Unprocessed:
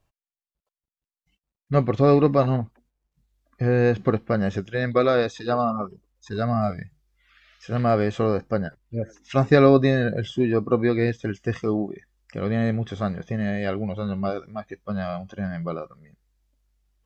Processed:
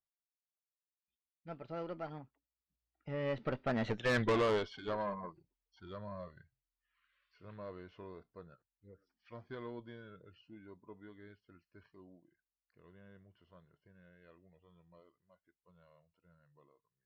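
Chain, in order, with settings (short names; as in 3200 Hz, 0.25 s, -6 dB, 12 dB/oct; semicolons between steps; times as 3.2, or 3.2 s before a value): Doppler pass-by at 4.11, 51 m/s, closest 9.8 m; LPF 4500 Hz 24 dB/oct; low shelf 390 Hz -7 dB; tube stage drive 30 dB, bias 0.55; gain +3.5 dB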